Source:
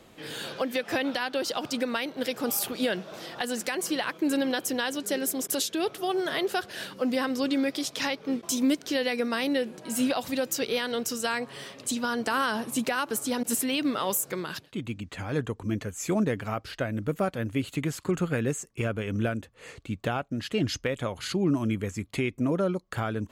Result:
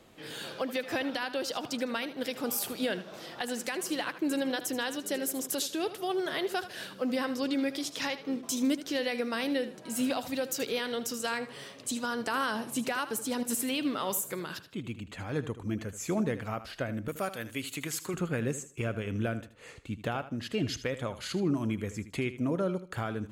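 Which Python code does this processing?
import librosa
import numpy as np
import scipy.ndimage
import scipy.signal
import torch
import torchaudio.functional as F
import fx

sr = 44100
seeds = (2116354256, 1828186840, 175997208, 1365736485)

y = fx.tilt_eq(x, sr, slope=3.0, at=(17.08, 18.14))
y = fx.echo_feedback(y, sr, ms=78, feedback_pct=27, wet_db=-13.5)
y = F.gain(torch.from_numpy(y), -4.0).numpy()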